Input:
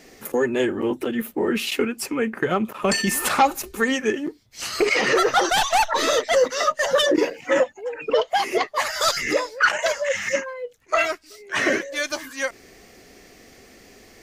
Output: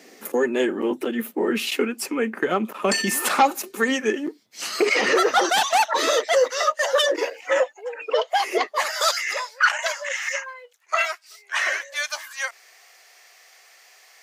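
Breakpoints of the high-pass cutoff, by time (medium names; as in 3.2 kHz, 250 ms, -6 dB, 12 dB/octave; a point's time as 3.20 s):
high-pass 24 dB/octave
5.62 s 200 Hz
6.61 s 470 Hz
8.46 s 470 Hz
8.66 s 220 Hz
9.27 s 760 Hz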